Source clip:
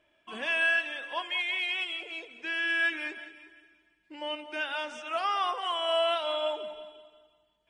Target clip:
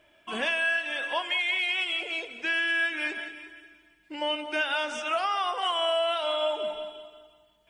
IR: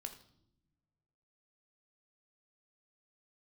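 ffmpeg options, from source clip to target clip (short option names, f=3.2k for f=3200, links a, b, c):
-filter_complex "[0:a]acompressor=threshold=-32dB:ratio=6,asplit=2[a][b];[1:a]atrim=start_sample=2205,highshelf=f=6.4k:g=11[c];[b][c]afir=irnorm=-1:irlink=0,volume=-2.5dB[d];[a][d]amix=inputs=2:normalize=0,volume=4.5dB"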